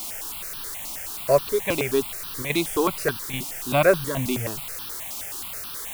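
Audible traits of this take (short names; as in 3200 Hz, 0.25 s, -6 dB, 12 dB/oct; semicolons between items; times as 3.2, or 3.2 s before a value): chopped level 1.2 Hz, depth 60%, duty 90%; a quantiser's noise floor 6-bit, dither triangular; notches that jump at a steady rate 9.4 Hz 460–2100 Hz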